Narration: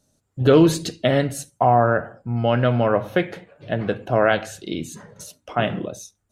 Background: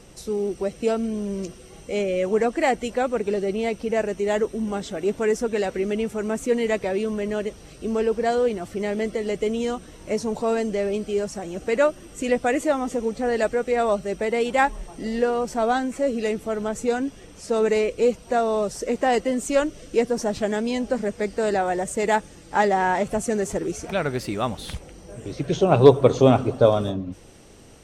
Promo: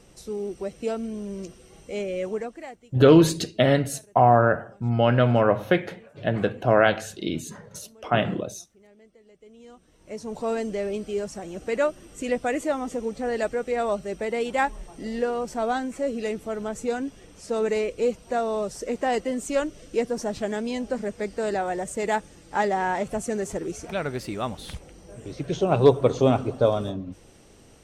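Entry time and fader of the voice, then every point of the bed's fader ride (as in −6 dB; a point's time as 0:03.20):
2.55 s, −0.5 dB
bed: 0:02.27 −5.5 dB
0:02.96 −29 dB
0:09.36 −29 dB
0:10.45 −4 dB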